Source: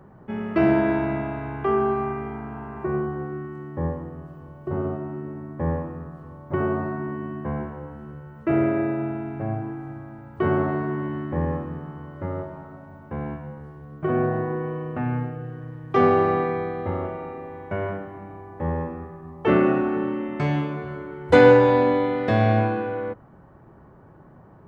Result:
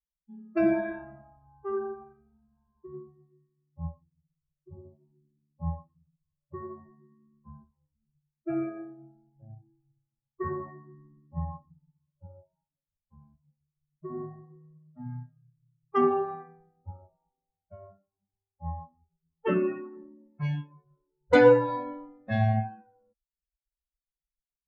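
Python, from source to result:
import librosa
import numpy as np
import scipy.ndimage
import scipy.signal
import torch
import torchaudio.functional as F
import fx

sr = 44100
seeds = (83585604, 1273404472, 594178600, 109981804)

y = fx.bin_expand(x, sr, power=3.0)
y = fx.env_lowpass(y, sr, base_hz=540.0, full_db=-21.5)
y = y * librosa.db_to_amplitude(-1.5)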